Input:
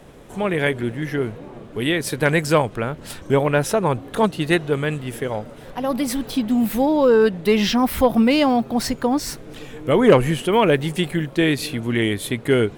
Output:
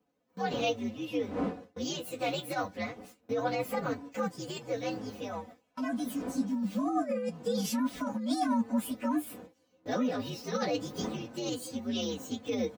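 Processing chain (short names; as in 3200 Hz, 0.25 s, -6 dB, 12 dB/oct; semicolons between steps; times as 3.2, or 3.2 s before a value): inharmonic rescaling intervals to 124%; wind noise 390 Hz -36 dBFS; negative-ratio compressor -20 dBFS, ratio -1; flange 0.25 Hz, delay 6.9 ms, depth 5.1 ms, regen +54%; gate with hold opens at -29 dBFS; HPF 120 Hz 12 dB/oct; comb 4 ms, depth 68%; gain -7.5 dB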